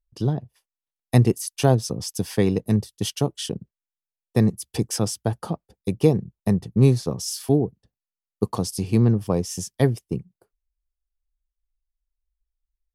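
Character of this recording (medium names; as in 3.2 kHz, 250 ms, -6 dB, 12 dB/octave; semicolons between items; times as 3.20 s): noise floor -92 dBFS; spectral tilt -6.5 dB/octave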